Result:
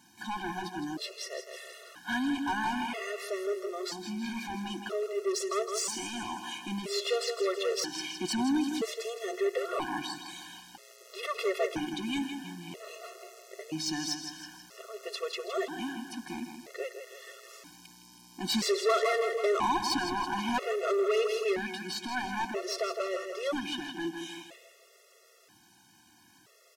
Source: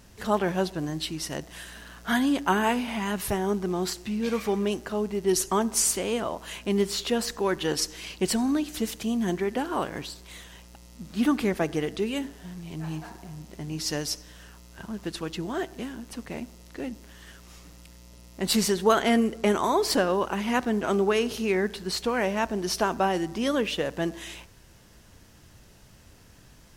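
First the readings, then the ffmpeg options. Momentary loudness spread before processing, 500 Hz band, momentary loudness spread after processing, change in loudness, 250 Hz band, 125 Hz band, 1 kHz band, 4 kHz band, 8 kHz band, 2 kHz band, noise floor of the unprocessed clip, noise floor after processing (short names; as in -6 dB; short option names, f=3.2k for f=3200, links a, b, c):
15 LU, -4.5 dB, 17 LU, -5.5 dB, -8.0 dB, -13.0 dB, -4.0 dB, -3.0 dB, -7.5 dB, -3.5 dB, -53 dBFS, -61 dBFS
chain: -filter_complex "[0:a]acrossover=split=6900[a][b];[b]acompressor=threshold=-53dB:ratio=4:attack=1:release=60[c];[a][c]amix=inputs=2:normalize=0,highpass=310,aecho=1:1:162|324|486|648|810:0.355|0.163|0.0751|0.0345|0.0159,asoftclip=type=tanh:threshold=-24.5dB,dynaudnorm=f=780:g=17:m=4dB,afftfilt=real='re*gt(sin(2*PI*0.51*pts/sr)*(1-2*mod(floor(b*sr/1024/360),2)),0)':imag='im*gt(sin(2*PI*0.51*pts/sr)*(1-2*mod(floor(b*sr/1024/360),2)),0)':win_size=1024:overlap=0.75"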